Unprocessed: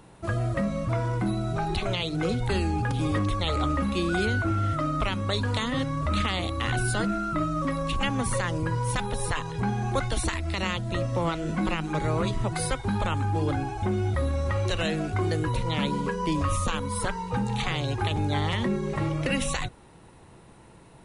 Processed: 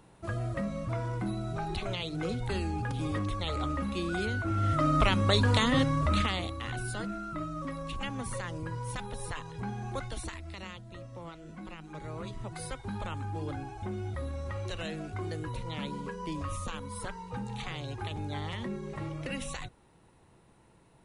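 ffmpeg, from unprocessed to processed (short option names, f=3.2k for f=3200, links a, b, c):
-af "volume=10dB,afade=t=in:st=4.45:d=0.51:silence=0.354813,afade=t=out:st=5.76:d=0.84:silence=0.251189,afade=t=out:st=9.93:d=0.97:silence=0.398107,afade=t=in:st=11.69:d=1.24:silence=0.421697"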